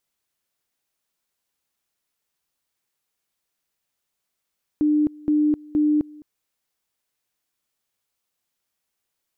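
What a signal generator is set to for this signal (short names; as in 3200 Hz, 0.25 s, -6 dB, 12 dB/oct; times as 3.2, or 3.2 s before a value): two-level tone 300 Hz -15.5 dBFS, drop 24 dB, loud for 0.26 s, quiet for 0.21 s, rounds 3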